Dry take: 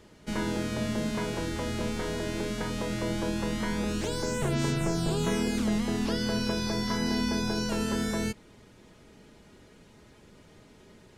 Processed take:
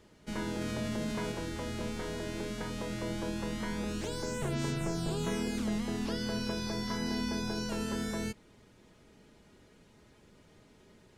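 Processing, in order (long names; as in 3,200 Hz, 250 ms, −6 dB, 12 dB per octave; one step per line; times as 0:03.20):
0:00.61–0:01.32: envelope flattener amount 50%
level −5.5 dB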